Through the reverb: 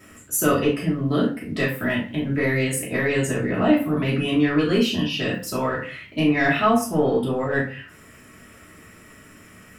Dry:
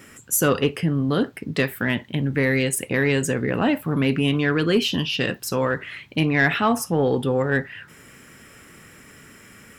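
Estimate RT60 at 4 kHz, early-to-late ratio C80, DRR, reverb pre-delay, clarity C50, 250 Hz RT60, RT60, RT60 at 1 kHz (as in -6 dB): 0.30 s, 13.0 dB, -8.0 dB, 3 ms, 7.5 dB, 0.45 s, 0.40 s, 0.40 s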